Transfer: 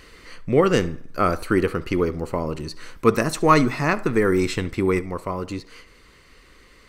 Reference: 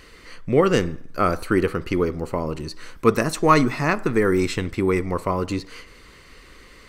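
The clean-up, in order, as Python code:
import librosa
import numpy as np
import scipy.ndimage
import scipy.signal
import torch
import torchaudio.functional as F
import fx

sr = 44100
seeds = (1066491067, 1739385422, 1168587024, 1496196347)

y = fx.fix_echo_inverse(x, sr, delay_ms=71, level_db=-22.0)
y = fx.fix_level(y, sr, at_s=4.99, step_db=4.5)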